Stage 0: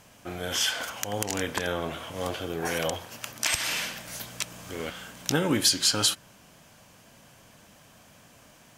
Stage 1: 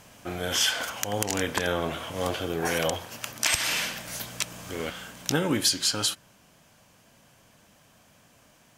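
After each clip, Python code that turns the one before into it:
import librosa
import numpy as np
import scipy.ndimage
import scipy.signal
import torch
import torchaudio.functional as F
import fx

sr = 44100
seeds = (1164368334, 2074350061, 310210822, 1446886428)

y = fx.rider(x, sr, range_db=4, speed_s=2.0)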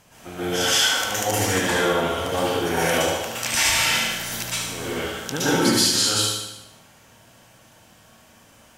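y = fx.echo_feedback(x, sr, ms=74, feedback_pct=54, wet_db=-5.5)
y = fx.rev_plate(y, sr, seeds[0], rt60_s=0.77, hf_ratio=0.85, predelay_ms=105, drr_db=-9.5)
y = y * librosa.db_to_amplitude(-4.0)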